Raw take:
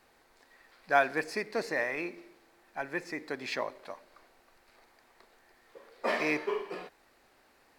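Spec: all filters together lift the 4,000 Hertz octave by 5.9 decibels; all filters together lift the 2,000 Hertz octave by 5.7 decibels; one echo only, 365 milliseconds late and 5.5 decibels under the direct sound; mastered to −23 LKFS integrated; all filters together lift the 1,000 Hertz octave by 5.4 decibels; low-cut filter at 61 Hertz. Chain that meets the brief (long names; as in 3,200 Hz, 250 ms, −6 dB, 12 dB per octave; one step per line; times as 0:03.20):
high-pass filter 61 Hz
parametric band 1,000 Hz +7 dB
parametric band 2,000 Hz +3.5 dB
parametric band 4,000 Hz +6 dB
single-tap delay 365 ms −5.5 dB
level +5 dB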